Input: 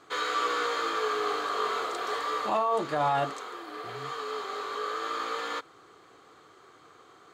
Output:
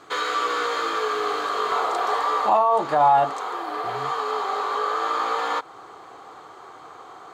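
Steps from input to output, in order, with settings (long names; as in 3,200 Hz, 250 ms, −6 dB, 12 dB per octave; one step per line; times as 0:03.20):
parametric band 830 Hz +3 dB 0.9 octaves, from 0:01.72 +13 dB
downward compressor 1.5 to 1, threshold −33 dBFS, peak gain reduction 7.5 dB
level +6.5 dB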